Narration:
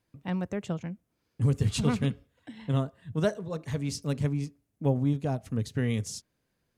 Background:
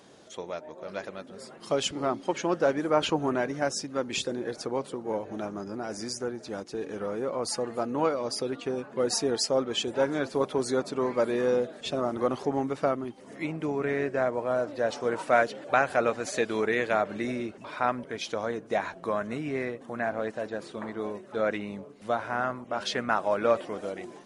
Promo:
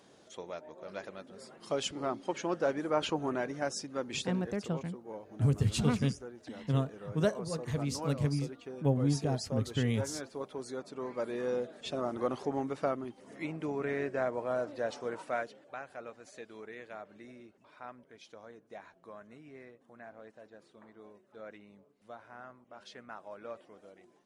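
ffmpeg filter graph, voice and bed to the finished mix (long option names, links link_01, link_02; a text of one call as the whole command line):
ffmpeg -i stem1.wav -i stem2.wav -filter_complex "[0:a]adelay=4000,volume=-2.5dB[link_01];[1:a]volume=1.5dB,afade=type=out:start_time=4.27:duration=0.26:silence=0.446684,afade=type=in:start_time=10.83:duration=1.22:silence=0.421697,afade=type=out:start_time=14.65:duration=1.07:silence=0.188365[link_02];[link_01][link_02]amix=inputs=2:normalize=0" out.wav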